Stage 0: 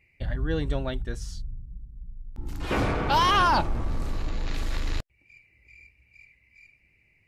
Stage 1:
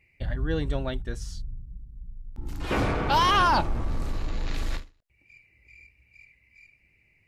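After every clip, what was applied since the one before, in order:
every ending faded ahead of time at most 210 dB per second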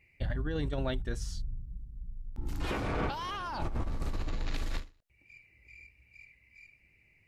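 compressor whose output falls as the input rises −28 dBFS, ratio −1
level −4 dB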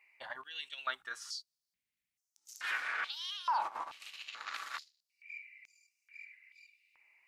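high-pass on a step sequencer 2.3 Hz 970–6,100 Hz
level −2 dB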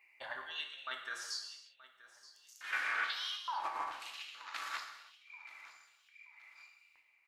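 square-wave tremolo 1.1 Hz, depth 60%, duty 70%
repeating echo 927 ms, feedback 36%, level −18 dB
reverb whose tail is shaped and stops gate 360 ms falling, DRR 3 dB

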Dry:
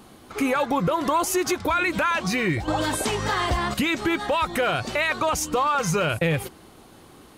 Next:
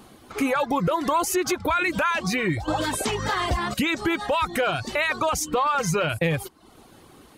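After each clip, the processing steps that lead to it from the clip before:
reverb reduction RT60 0.54 s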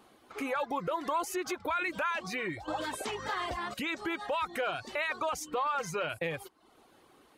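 bass and treble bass −11 dB, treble −5 dB
level −8.5 dB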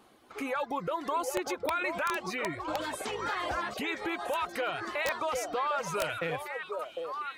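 echo through a band-pass that steps 754 ms, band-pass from 560 Hz, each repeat 1.4 octaves, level −1 dB
wrap-around overflow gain 21 dB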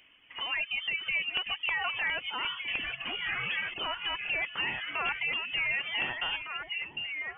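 voice inversion scrambler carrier 3,300 Hz

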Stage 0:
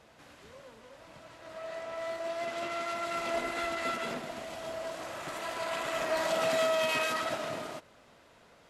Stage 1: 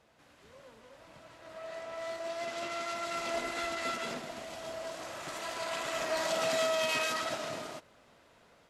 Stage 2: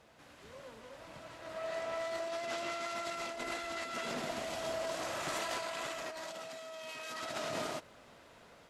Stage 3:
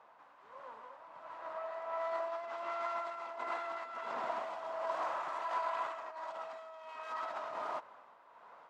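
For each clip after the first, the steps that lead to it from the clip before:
automatic gain control gain up to 5 dB; dynamic equaliser 5,800 Hz, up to +6 dB, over −48 dBFS, Q 0.86; level −7.5 dB
compressor whose output falls as the input rises −40 dBFS, ratio −1
amplitude tremolo 1.4 Hz, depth 50%; resonant band-pass 1,000 Hz, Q 3.3; level +10.5 dB

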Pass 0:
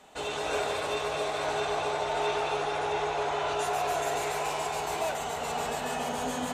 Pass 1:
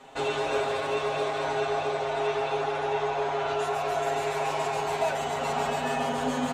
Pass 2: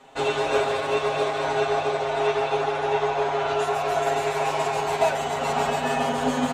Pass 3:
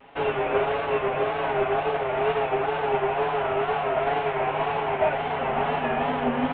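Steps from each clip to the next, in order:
low-pass filter 3,400 Hz 6 dB per octave; comb filter 7.4 ms, depth 85%; speech leveller 0.5 s
expander for the loud parts 1.5 to 1, over −38 dBFS; level +6.5 dB
variable-slope delta modulation 16 kbit/s; tape wow and flutter 80 cents

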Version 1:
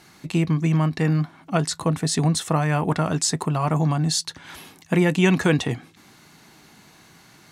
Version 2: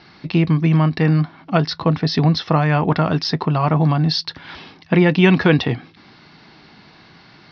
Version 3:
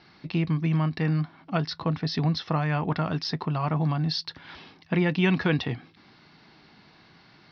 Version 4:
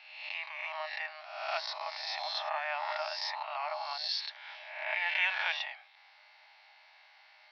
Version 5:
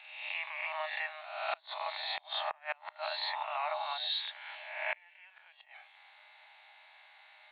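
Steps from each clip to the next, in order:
Butterworth low-pass 5,400 Hz 96 dB per octave; level +5 dB
dynamic equaliser 460 Hz, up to −3 dB, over −25 dBFS, Q 0.78; level −8.5 dB
peak hold with a rise ahead of every peak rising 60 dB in 0.99 s; Chebyshev high-pass with heavy ripple 590 Hz, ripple 9 dB; level −1 dB
hearing-aid frequency compression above 2,800 Hz 1.5 to 1; gate with flip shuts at −24 dBFS, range −29 dB; level +1.5 dB

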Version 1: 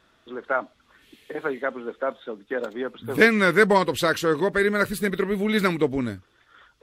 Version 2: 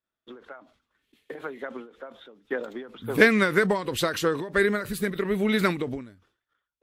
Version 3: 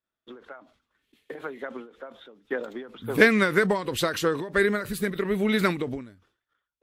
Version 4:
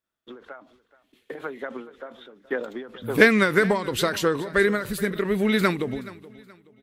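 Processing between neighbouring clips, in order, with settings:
downward expander −44 dBFS; every ending faded ahead of time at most 120 dB per second
no processing that can be heard
repeating echo 425 ms, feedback 33%, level −19 dB; level +2 dB

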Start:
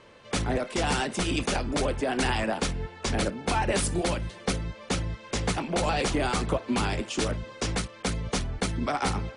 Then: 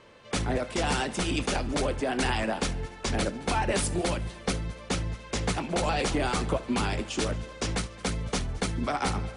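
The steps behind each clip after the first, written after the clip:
echo machine with several playback heads 72 ms, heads first and third, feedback 49%, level −22 dB
level −1 dB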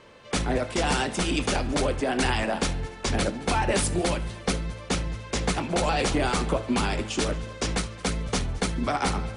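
hum removal 109 Hz, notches 39
level +3 dB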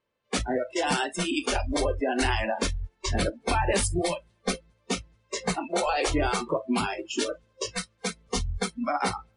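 noise reduction from a noise print of the clip's start 29 dB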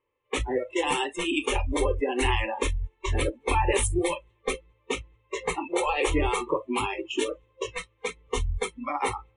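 phaser with its sweep stopped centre 1,000 Hz, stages 8
low-pass that shuts in the quiet parts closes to 2,600 Hz, open at −25 dBFS
level +3.5 dB

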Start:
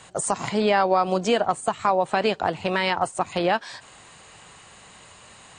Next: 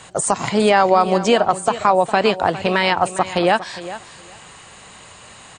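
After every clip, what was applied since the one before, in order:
repeating echo 407 ms, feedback 16%, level −14.5 dB
level +6 dB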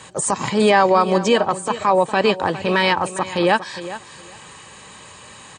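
transient designer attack −6 dB, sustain −2 dB
notch comb filter 700 Hz
level +2 dB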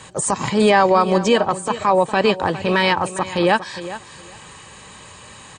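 low-shelf EQ 88 Hz +8.5 dB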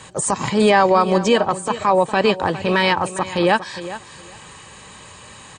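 no processing that can be heard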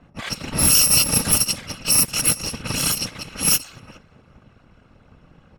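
samples in bit-reversed order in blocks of 128 samples
random phases in short frames
low-pass that shuts in the quiet parts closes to 930 Hz, open at −11.5 dBFS

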